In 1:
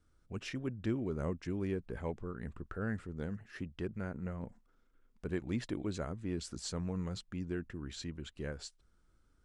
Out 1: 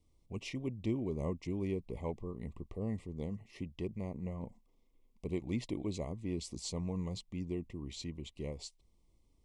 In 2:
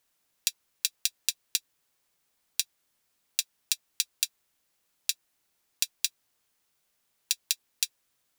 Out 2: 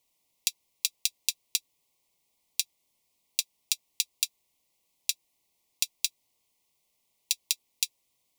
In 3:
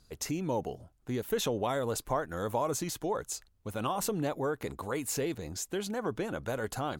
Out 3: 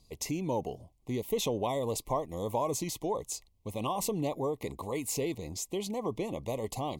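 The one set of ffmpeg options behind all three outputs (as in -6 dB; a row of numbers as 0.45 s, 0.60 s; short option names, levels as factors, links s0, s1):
-af "asuperstop=centerf=1500:order=12:qfactor=1.9"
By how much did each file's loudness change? 0.0 LU, 0.0 LU, 0.0 LU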